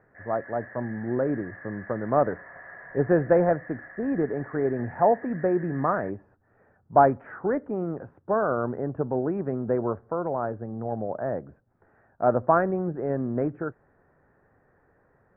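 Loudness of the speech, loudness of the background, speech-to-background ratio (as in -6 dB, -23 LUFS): -27.0 LUFS, -44.5 LUFS, 17.5 dB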